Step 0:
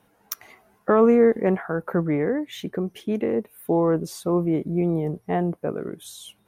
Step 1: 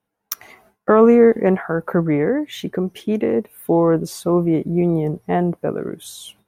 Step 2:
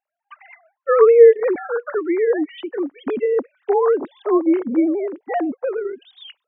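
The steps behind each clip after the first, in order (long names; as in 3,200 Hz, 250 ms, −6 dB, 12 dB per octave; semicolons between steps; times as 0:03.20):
noise gate with hold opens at −46 dBFS; level +5 dB
three sine waves on the formant tracks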